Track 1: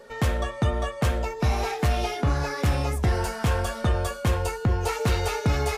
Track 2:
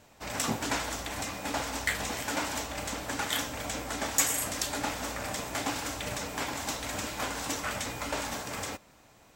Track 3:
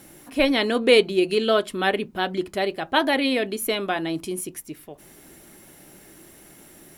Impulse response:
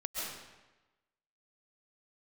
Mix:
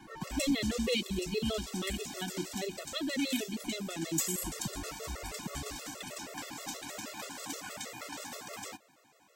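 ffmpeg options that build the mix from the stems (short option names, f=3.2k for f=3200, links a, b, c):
-filter_complex "[0:a]equalizer=f=1.1k:w=5.9:g=13.5,aecho=1:1:5.3:0.65,acompressor=threshold=-26dB:ratio=6,volume=-7dB,asplit=3[a][b][c];[a]atrim=end=2.06,asetpts=PTS-STARTPTS,afade=t=out:st=2.056:d=0.004:c=hsin[d];[b]atrim=start=2.06:end=4.35,asetpts=PTS-STARTPTS,volume=0[e];[c]atrim=start=4.35,asetpts=PTS-STARTPTS,afade=t=in:d=0.004:c=hsin[f];[d][e][f]concat=n=3:v=0:a=1[g];[1:a]highpass=200,volume=-2dB[h];[2:a]lowpass=3.8k,volume=-1.5dB[i];[g][h][i]amix=inputs=3:normalize=0,acrossover=split=290|3000[j][k][l];[k]acompressor=threshold=-40dB:ratio=6[m];[j][m][l]amix=inputs=3:normalize=0,afftfilt=real='re*gt(sin(2*PI*6.3*pts/sr)*(1-2*mod(floor(b*sr/1024/360),2)),0)':imag='im*gt(sin(2*PI*6.3*pts/sr)*(1-2*mod(floor(b*sr/1024/360),2)),0)':win_size=1024:overlap=0.75"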